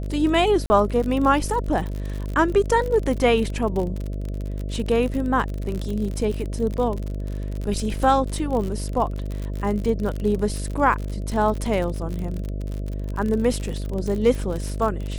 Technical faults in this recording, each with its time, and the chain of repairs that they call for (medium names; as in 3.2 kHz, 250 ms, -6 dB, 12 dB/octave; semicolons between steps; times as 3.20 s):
buzz 50 Hz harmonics 13 -28 dBFS
crackle 51 per s -27 dBFS
0.66–0.70 s: dropout 40 ms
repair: de-click; de-hum 50 Hz, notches 13; interpolate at 0.66 s, 40 ms